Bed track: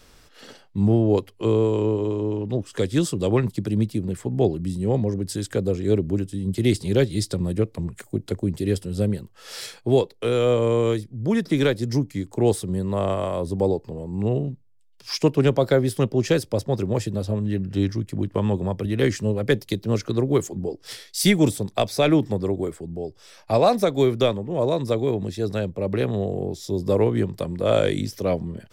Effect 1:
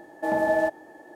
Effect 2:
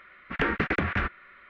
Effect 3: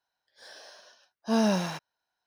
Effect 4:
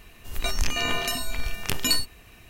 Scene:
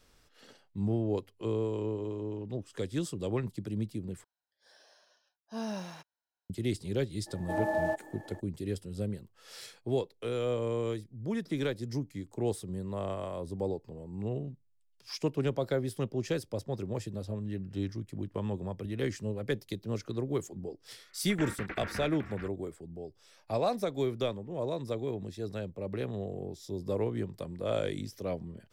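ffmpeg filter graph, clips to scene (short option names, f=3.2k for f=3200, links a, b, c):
-filter_complex "[0:a]volume=-12dB[a];[1:a]acompressor=mode=upward:threshold=-34dB:ratio=2.5:attack=3.2:release=140:knee=2.83:detection=peak[b];[2:a]aecho=1:1:430:0.473[c];[a]asplit=2[d][e];[d]atrim=end=4.244[f];[3:a]atrim=end=2.26,asetpts=PTS-STARTPTS,volume=-12.5dB[g];[e]atrim=start=6.496[h];[b]atrim=end=1.15,asetpts=PTS-STARTPTS,volume=-7.5dB,afade=t=in:d=0.02,afade=t=out:st=1.13:d=0.02,adelay=7260[i];[c]atrim=end=1.49,asetpts=PTS-STARTPTS,volume=-13dB,afade=t=in:d=0.004:c=hsin,afade=t=out:st=1.486:d=0.004:c=hsin,adelay=20990[j];[f][g]acrossfade=d=0.004:c1=hsin:c2=hsin[k];[k][h]acrossfade=d=0.004:c1=hsin:c2=hsin[l];[l][i][j]amix=inputs=3:normalize=0"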